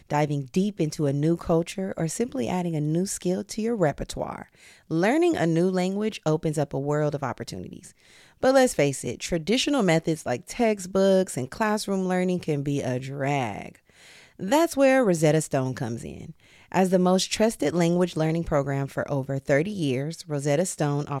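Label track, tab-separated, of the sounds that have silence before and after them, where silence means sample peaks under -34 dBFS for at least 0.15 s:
4.910000	7.860000	sound
8.430000	13.750000	sound
14.400000	16.300000	sound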